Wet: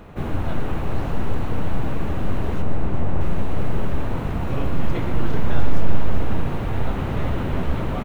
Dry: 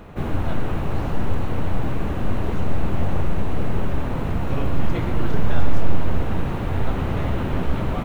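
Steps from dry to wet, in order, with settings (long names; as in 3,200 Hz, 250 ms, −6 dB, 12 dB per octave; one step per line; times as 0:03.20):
0:02.62–0:03.21: low-pass filter 1,900 Hz 6 dB per octave
single-tap delay 381 ms −9.5 dB
level −1 dB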